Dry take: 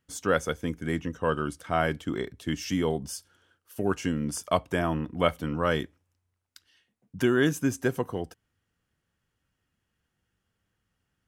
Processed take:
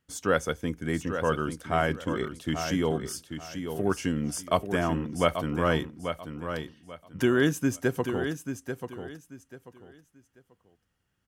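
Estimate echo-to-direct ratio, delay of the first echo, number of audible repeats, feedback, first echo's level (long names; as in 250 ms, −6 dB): −7.5 dB, 838 ms, 3, 25%, −8.0 dB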